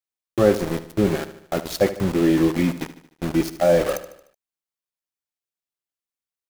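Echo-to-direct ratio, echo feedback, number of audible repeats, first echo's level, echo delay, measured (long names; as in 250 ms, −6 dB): −12.5 dB, 52%, 4, −14.0 dB, 75 ms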